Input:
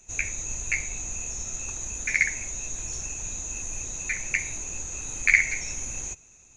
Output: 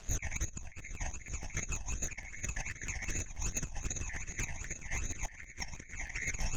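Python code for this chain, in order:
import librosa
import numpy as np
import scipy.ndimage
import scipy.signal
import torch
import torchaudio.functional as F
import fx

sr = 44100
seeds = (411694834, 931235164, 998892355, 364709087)

p1 = fx.high_shelf(x, sr, hz=2400.0, db=-4.5)
p2 = fx.echo_multitap(p1, sr, ms=(124, 133, 479, 542, 781, 851), db=(-9.0, -19.0, -11.5, -6.0, -8.0, -16.0))
p3 = fx.phaser_stages(p2, sr, stages=12, low_hz=400.0, high_hz=1000.0, hz=2.6, feedback_pct=35)
p4 = fx.dmg_crackle(p3, sr, seeds[0], per_s=360.0, level_db=-49.0)
p5 = scipy.signal.sosfilt(scipy.signal.butter(2, 5800.0, 'lowpass', fs=sr, output='sos'), p4)
p6 = fx.over_compress(p5, sr, threshold_db=-39.0, ratio=-0.5)
p7 = p6 + fx.echo_single(p6, sr, ms=1187, db=-14.0, dry=0)
p8 = np.clip(p7, -10.0 ** (-27.5 / 20.0), 10.0 ** (-27.5 / 20.0))
p9 = fx.peak_eq(p8, sr, hz=670.0, db=4.5, octaves=0.64)
p10 = fx.buffer_crackle(p9, sr, first_s=0.46, period_s=0.16, block=512, kind='repeat')
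y = p10 * librosa.db_to_amplitude(1.0)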